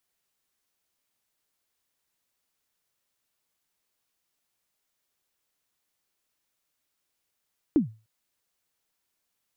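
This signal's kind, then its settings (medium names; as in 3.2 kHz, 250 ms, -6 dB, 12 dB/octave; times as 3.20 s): kick drum length 0.30 s, from 340 Hz, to 110 Hz, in 120 ms, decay 0.31 s, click off, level -13.5 dB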